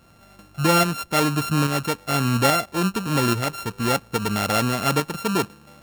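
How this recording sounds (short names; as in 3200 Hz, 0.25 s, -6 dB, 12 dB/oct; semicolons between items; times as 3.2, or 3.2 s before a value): a buzz of ramps at a fixed pitch in blocks of 32 samples; tremolo saw up 1.2 Hz, depth 45%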